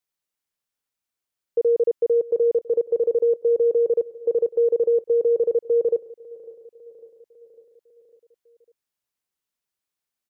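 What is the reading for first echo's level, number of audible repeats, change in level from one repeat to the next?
-20.0 dB, 4, -4.5 dB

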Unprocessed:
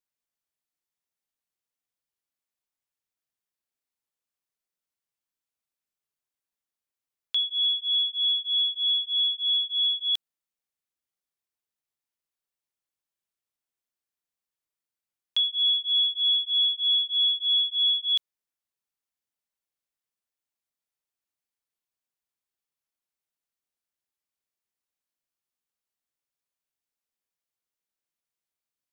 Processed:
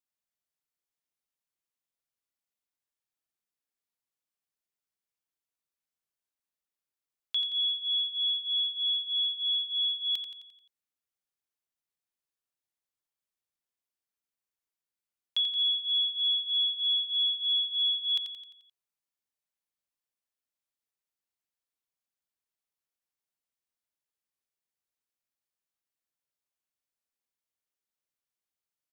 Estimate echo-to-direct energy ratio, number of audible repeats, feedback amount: -6.5 dB, 5, 51%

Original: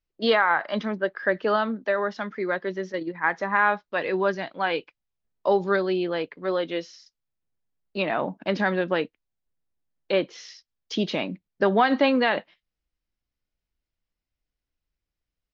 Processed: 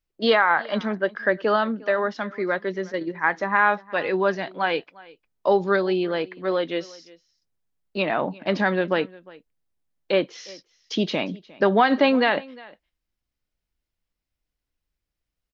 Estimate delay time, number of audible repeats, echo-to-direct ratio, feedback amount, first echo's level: 0.355 s, 1, -22.5 dB, no steady repeat, -22.5 dB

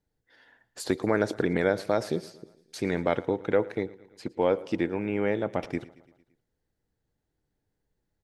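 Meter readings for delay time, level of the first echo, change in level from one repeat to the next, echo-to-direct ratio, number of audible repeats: 0.113 s, -21.0 dB, -4.5 dB, -19.0 dB, 4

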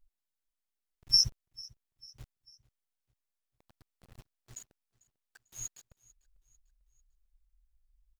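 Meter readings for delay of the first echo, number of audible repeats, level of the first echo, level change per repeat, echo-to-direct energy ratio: 0.446 s, 2, -23.0 dB, -6.5 dB, -22.0 dB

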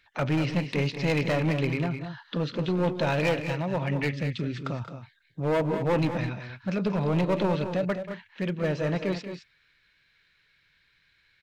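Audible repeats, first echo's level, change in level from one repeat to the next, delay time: 2, -13.5 dB, no steady repeat, 0.184 s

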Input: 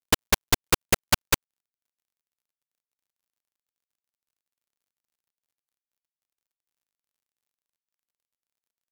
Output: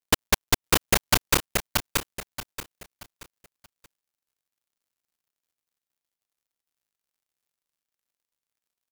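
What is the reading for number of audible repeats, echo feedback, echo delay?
4, 31%, 0.629 s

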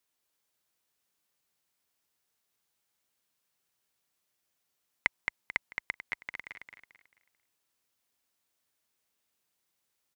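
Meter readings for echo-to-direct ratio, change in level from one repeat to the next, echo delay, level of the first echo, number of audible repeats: -5.0 dB, -9.5 dB, 0.22 s, -5.5 dB, 4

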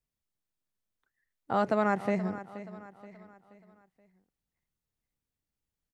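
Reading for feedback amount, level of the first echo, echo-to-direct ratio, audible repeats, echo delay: 43%, -14.5 dB, -13.5 dB, 3, 0.477 s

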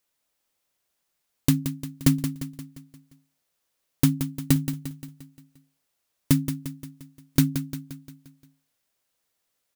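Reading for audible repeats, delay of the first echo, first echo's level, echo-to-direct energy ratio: 5, 0.175 s, -9.5 dB, -8.0 dB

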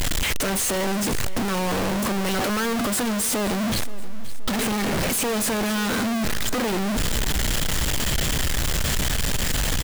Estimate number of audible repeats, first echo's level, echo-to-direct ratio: 3, -17.0 dB, -16.0 dB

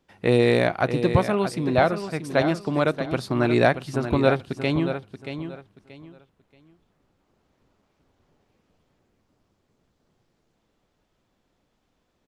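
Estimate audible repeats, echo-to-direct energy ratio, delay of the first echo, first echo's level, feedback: 3, -9.0 dB, 0.63 s, -9.5 dB, 25%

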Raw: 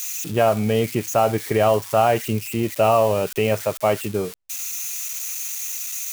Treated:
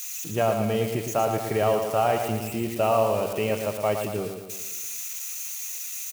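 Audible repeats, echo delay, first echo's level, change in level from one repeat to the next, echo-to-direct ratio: 6, 0.114 s, -6.5 dB, -5.5 dB, -5.0 dB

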